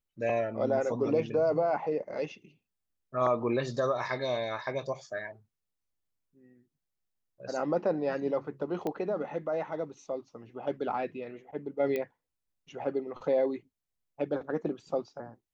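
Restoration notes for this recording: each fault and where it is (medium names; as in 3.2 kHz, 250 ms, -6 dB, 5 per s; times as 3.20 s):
8.87 s: pop -21 dBFS
11.96 s: pop -20 dBFS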